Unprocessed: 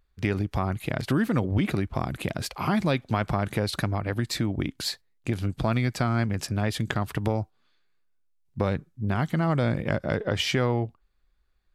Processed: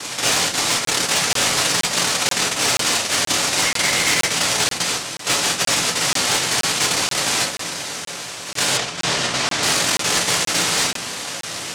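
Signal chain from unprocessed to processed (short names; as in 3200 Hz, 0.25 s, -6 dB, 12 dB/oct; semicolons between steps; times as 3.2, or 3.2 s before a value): per-bin compression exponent 0.2; flange 0.91 Hz, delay 5.6 ms, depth 8.2 ms, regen 0%; noise vocoder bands 1; 3.62–4.27 bell 2100 Hz +10.5 dB 0.2 oct; on a send at -3.5 dB: reverb RT60 0.35 s, pre-delay 7 ms; on the sum: hard clip -11.5 dBFS, distortion -21 dB; 8.77–9.63 air absorption 62 m; crackling interface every 0.48 s, samples 1024, zero, from 0.85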